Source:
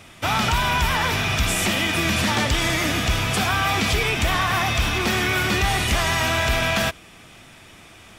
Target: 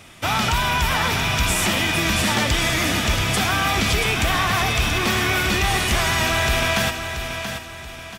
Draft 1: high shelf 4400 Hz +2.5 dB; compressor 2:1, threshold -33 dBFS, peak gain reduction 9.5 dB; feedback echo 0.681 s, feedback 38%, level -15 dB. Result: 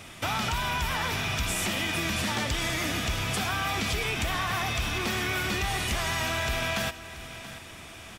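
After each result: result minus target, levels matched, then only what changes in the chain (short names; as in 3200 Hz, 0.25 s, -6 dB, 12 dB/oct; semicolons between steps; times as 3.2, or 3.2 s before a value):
compressor: peak gain reduction +9.5 dB; echo-to-direct -7 dB
remove: compressor 2:1, threshold -33 dBFS, peak gain reduction 9.5 dB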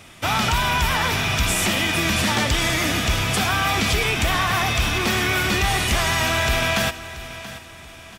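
echo-to-direct -7 dB
change: feedback echo 0.681 s, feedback 38%, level -8 dB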